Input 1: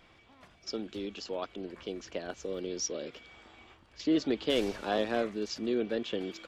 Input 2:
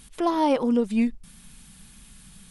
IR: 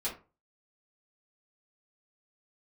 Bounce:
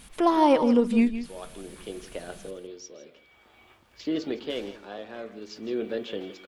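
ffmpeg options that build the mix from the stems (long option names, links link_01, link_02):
-filter_complex "[0:a]acrusher=bits=10:mix=0:aa=0.000001,tremolo=f=0.5:d=0.68,volume=-0.5dB,asplit=3[link_01][link_02][link_03];[link_02]volume=-11.5dB[link_04];[link_03]volume=-13dB[link_05];[1:a]volume=2.5dB,asplit=2[link_06][link_07];[link_07]volume=-12dB[link_08];[2:a]atrim=start_sample=2205[link_09];[link_04][link_09]afir=irnorm=-1:irlink=0[link_10];[link_05][link_08]amix=inputs=2:normalize=0,aecho=0:1:163:1[link_11];[link_01][link_06][link_10][link_11]amix=inputs=4:normalize=0,bass=frequency=250:gain=-3,treble=frequency=4000:gain=-4"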